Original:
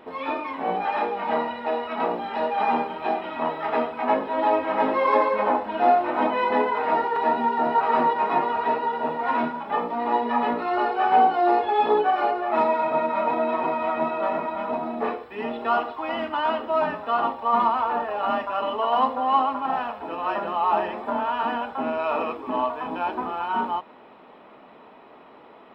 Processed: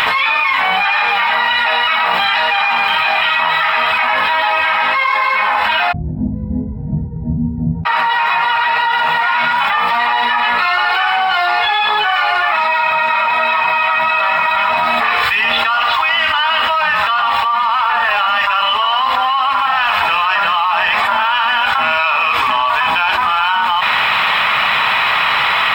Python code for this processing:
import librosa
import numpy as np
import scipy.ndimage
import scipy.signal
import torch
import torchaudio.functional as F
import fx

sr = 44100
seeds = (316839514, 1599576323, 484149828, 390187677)

y = fx.cheby2_lowpass(x, sr, hz=1100.0, order=4, stop_db=80, at=(5.91, 7.85), fade=0.02)
y = fx.curve_eq(y, sr, hz=(130.0, 300.0, 460.0, 1100.0, 2200.0), db=(0, -23, -17, 6, 15))
y = fx.env_flatten(y, sr, amount_pct=100)
y = y * librosa.db_to_amplitude(-2.0)